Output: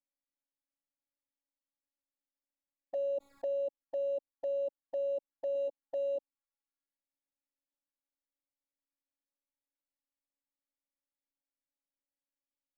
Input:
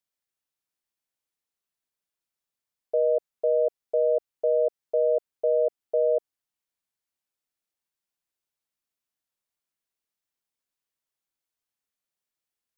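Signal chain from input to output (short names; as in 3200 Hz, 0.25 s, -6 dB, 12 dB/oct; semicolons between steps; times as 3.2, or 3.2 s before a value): Wiener smoothing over 15 samples; 5.54–6.16 doubler 12 ms -6 dB; robotiser 280 Hz; envelope flanger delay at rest 3.2 ms, full sweep at -28 dBFS; limiter -29.5 dBFS, peak gain reduction 7.5 dB; 2.95–3.53 fast leveller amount 70%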